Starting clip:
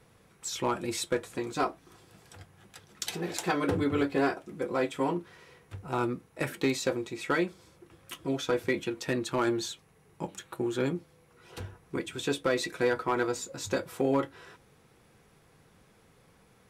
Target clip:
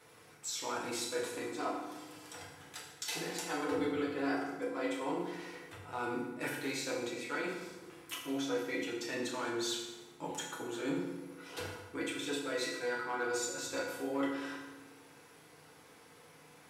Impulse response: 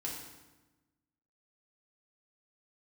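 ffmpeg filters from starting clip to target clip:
-filter_complex "[0:a]highpass=frequency=580:poles=1,areverse,acompressor=threshold=-41dB:ratio=6,areverse[link_01];[1:a]atrim=start_sample=2205[link_02];[link_01][link_02]afir=irnorm=-1:irlink=0,volume=6dB"

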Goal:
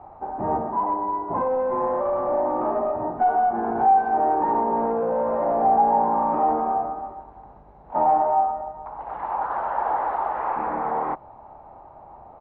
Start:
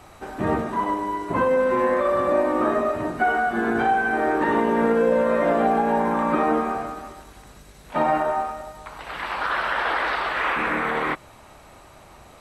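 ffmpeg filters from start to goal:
ffmpeg -i in.wav -af "aresample=16000,asoftclip=type=tanh:threshold=-19.5dB,aresample=44100,lowpass=frequency=840:width_type=q:width=5,volume=-4dB" out.wav

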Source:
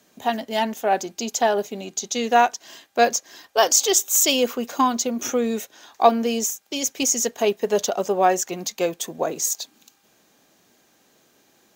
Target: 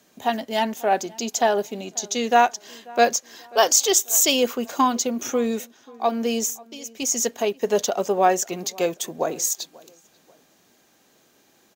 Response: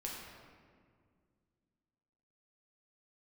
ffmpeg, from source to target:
-filter_complex "[0:a]asplit=3[link_01][link_02][link_03];[link_01]afade=type=out:start_time=5.22:duration=0.02[link_04];[link_02]tremolo=f=1.1:d=0.76,afade=type=in:start_time=5.22:duration=0.02,afade=type=out:start_time=7.59:duration=0.02[link_05];[link_03]afade=type=in:start_time=7.59:duration=0.02[link_06];[link_04][link_05][link_06]amix=inputs=3:normalize=0,asplit=2[link_07][link_08];[link_08]adelay=538,lowpass=frequency=2000:poles=1,volume=-23dB,asplit=2[link_09][link_10];[link_10]adelay=538,lowpass=frequency=2000:poles=1,volume=0.36[link_11];[link_07][link_09][link_11]amix=inputs=3:normalize=0"

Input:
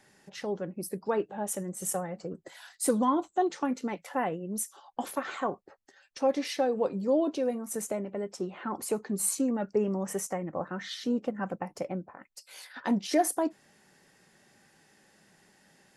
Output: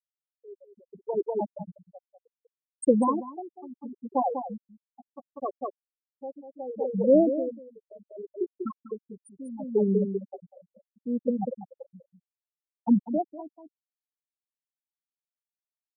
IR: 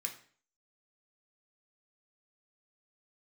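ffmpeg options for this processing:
-filter_complex "[0:a]afftfilt=real='re*gte(hypot(re,im),0.2)':imag='im*gte(hypot(re,im),0.2)':win_size=1024:overlap=0.75,asplit=2[link_01][link_02];[link_02]aecho=0:1:195:0.447[link_03];[link_01][link_03]amix=inputs=2:normalize=0,aeval=exprs='val(0)*pow(10,-22*(0.5-0.5*cos(2*PI*0.7*n/s))/20)':channel_layout=same,volume=7.5dB"

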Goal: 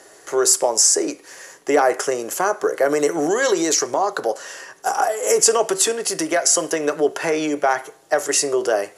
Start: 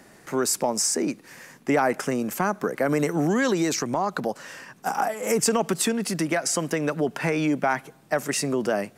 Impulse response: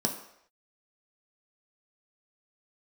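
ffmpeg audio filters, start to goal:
-filter_complex "[0:a]lowpass=frequency=10000:width=0.5412,lowpass=frequency=10000:width=1.3066,bass=frequency=250:gain=-7,treble=frequency=4000:gain=11,asplit=2[link_01][link_02];[1:a]atrim=start_sample=2205,asetrate=83790,aresample=44100[link_03];[link_02][link_03]afir=irnorm=-1:irlink=0,volume=-4.5dB[link_04];[link_01][link_04]amix=inputs=2:normalize=0,volume=-1dB"

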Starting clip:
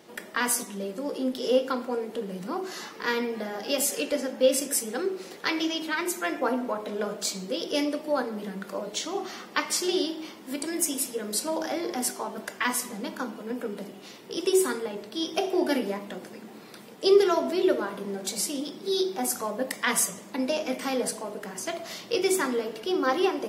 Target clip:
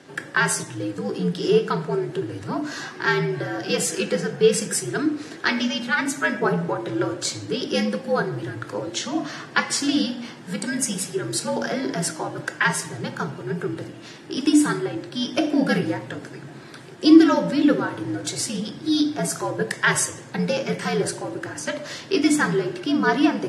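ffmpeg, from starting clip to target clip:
ffmpeg -i in.wav -af "afreqshift=-79,highpass=120,equalizer=frequency=150:width_type=q:width=4:gain=5,equalizer=frequency=340:width_type=q:width=4:gain=5,equalizer=frequency=1600:width_type=q:width=4:gain=8,lowpass=frequency=9600:width=0.5412,lowpass=frequency=9600:width=1.3066,volume=3.5dB" out.wav

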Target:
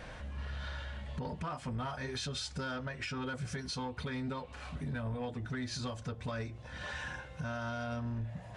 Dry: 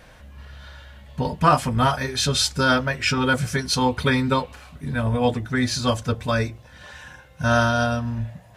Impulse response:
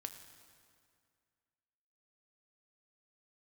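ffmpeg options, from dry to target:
-af "highshelf=frequency=6200:gain=-8.5,acompressor=threshold=-34dB:ratio=5,alimiter=level_in=5.5dB:limit=-24dB:level=0:latency=1:release=172,volume=-5.5dB,asoftclip=type=tanh:threshold=-32.5dB,aresample=22050,aresample=44100,volume=2dB"

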